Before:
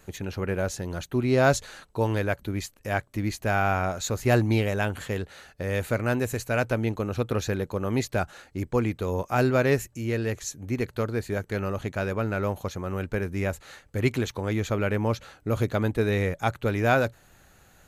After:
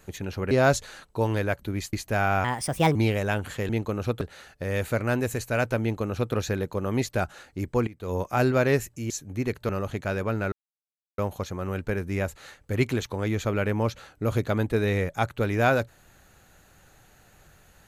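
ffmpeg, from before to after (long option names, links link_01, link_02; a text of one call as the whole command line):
ffmpeg -i in.wav -filter_complex "[0:a]asplit=11[link_01][link_02][link_03][link_04][link_05][link_06][link_07][link_08][link_09][link_10][link_11];[link_01]atrim=end=0.512[link_12];[link_02]atrim=start=1.308:end=2.732[link_13];[link_03]atrim=start=3.268:end=3.784[link_14];[link_04]atrim=start=3.78:end=4.46,asetpts=PTS-STARTPTS,asetrate=58653,aresample=44100,atrim=end_sample=22547,asetpts=PTS-STARTPTS[link_15];[link_05]atrim=start=4.456:end=5.202[link_16];[link_06]atrim=start=6.798:end=7.322[link_17];[link_07]atrim=start=5.198:end=8.86,asetpts=PTS-STARTPTS,afade=type=out:start_time=3.658:duration=0.004:curve=hsin:silence=0.133352[link_18];[link_08]atrim=start=8.86:end=10.092,asetpts=PTS-STARTPTS,afade=type=in:duration=0.26:curve=qua:silence=0.133352[link_19];[link_09]atrim=start=10.428:end=11.022[link_20];[link_10]atrim=start=11.598:end=12.43,asetpts=PTS-STARTPTS,afade=type=out:start_time=0.828:duration=0.004:curve=hsin,apad=pad_dur=0.66[link_21];[link_11]atrim=start=12.43,asetpts=PTS-STARTPTS,afade=type=in:duration=0.004:curve=hsin[link_22];[link_12][link_13]acrossfade=duration=0.004:curve1=hsin:curve2=hsin[link_23];[link_23][link_14]acrossfade=duration=0.004:curve1=hsin:curve2=hsin[link_24];[link_24][link_15]acrossfade=duration=0.004:curve1=hsin:curve2=hsin[link_25];[link_25][link_16]acrossfade=duration=0.004:curve1=hsin:curve2=hsin[link_26];[link_26][link_17]acrossfade=duration=0.004:curve1=hsin:curve2=hsin[link_27];[link_18][link_19]concat=n=2:v=0:a=1[link_28];[link_27][link_28]acrossfade=duration=0.004:curve1=hsin:curve2=hsin[link_29];[link_29][link_20]acrossfade=duration=0.004:curve1=hsin:curve2=hsin[link_30];[link_21][link_22]concat=n=2:v=0:a=1[link_31];[link_30][link_31]acrossfade=duration=0.004:curve1=hsin:curve2=hsin" out.wav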